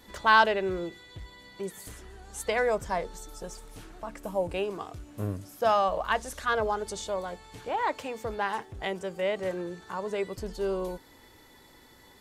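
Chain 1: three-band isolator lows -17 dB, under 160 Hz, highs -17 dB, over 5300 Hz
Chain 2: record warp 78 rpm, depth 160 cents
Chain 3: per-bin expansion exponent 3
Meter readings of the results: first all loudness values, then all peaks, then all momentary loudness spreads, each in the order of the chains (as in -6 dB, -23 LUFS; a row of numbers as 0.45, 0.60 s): -30.0, -30.0, -34.0 LUFS; -8.0, -9.0, -12.5 dBFS; 17, 18, 20 LU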